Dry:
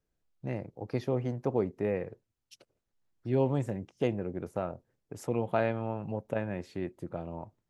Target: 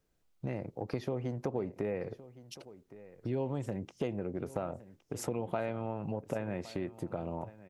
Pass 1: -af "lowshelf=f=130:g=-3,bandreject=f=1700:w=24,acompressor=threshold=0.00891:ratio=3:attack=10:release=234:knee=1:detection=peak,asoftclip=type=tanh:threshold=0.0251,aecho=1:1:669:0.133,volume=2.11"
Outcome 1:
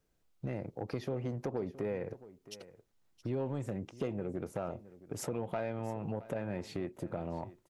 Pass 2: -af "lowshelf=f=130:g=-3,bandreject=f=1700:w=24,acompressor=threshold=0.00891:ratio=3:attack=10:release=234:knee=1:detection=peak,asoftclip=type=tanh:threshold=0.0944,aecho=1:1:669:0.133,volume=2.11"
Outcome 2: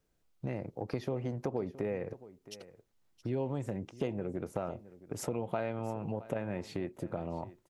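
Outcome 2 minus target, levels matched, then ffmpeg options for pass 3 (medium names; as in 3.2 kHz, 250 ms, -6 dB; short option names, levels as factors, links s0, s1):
echo 446 ms early
-af "lowshelf=f=130:g=-3,bandreject=f=1700:w=24,acompressor=threshold=0.00891:ratio=3:attack=10:release=234:knee=1:detection=peak,asoftclip=type=tanh:threshold=0.0944,aecho=1:1:1115:0.133,volume=2.11"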